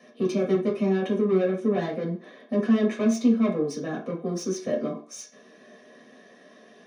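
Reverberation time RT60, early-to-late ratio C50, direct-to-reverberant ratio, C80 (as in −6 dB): 0.40 s, 8.0 dB, −6.0 dB, 13.5 dB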